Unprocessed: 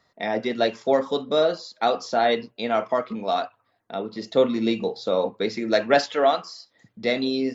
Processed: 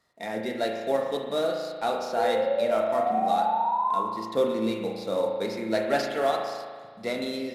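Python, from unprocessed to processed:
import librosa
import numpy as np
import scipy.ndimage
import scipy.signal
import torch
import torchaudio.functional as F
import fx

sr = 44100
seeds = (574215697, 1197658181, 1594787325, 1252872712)

y = fx.cvsd(x, sr, bps=64000)
y = fx.spec_paint(y, sr, seeds[0], shape='rise', start_s=2.18, length_s=1.85, low_hz=480.0, high_hz=1100.0, level_db=-21.0)
y = fx.rev_spring(y, sr, rt60_s=1.7, pass_ms=(36,), chirp_ms=40, drr_db=2.0)
y = y * 10.0 ** (-6.5 / 20.0)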